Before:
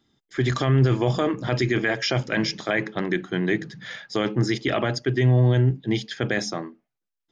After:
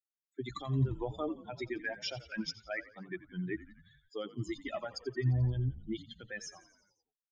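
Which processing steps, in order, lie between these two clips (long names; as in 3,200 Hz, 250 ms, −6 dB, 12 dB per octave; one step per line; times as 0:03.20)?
spectral dynamics exaggerated over time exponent 3
echo with shifted repeats 87 ms, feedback 63%, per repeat −54 Hz, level −16.5 dB
0:02.32–0:02.96: multiband upward and downward expander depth 70%
level −8 dB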